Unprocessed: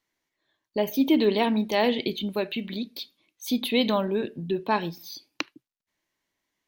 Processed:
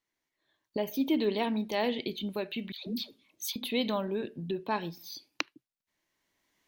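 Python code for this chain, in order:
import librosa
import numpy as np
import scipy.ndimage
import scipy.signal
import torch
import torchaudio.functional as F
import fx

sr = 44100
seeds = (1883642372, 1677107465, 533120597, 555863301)

y = fx.recorder_agc(x, sr, target_db=-18.0, rise_db_per_s=11.0, max_gain_db=30)
y = fx.dispersion(y, sr, late='lows', ms=148.0, hz=830.0, at=(2.72, 3.56))
y = y * librosa.db_to_amplitude(-7.0)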